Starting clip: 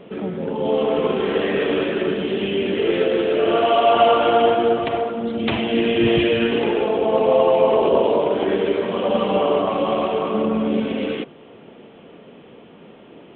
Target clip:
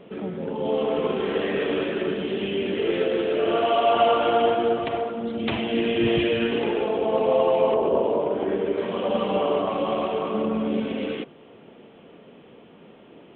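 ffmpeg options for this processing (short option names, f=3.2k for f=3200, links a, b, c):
-filter_complex "[0:a]asettb=1/sr,asplit=3[a][b][c];[a]atrim=end=7.744[d];[b]atrim=start=7.74:end=8.78,asetpts=PTS-STARTPTS,afade=t=in:d=0.004:c=qsin,afade=t=out:st=1.036:d=0.004:c=qsin,lowpass=f=1.4k:p=1[e];[c]atrim=start=8.776[f];[d][e]acrossfade=d=0.004:c1=hsin:c2=qsin[g];[g][f]acrossfade=d=0.004:c1=qsin:c2=hsin,volume=-4.5dB"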